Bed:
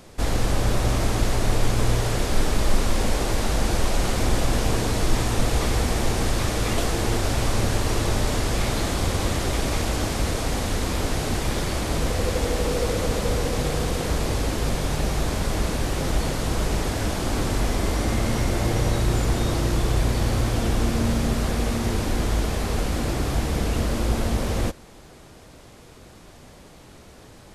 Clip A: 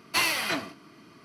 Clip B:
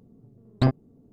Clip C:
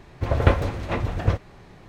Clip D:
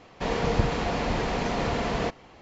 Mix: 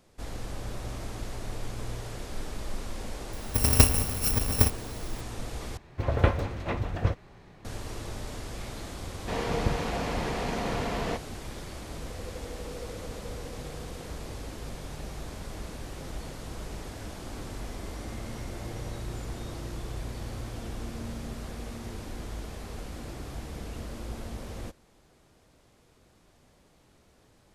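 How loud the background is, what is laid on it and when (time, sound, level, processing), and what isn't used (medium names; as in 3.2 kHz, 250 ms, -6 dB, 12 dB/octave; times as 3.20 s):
bed -15 dB
3.33 s: add C -1.5 dB + bit-reversed sample order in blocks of 128 samples
5.77 s: replace with C -5 dB
9.07 s: add D -4 dB
not used: A, B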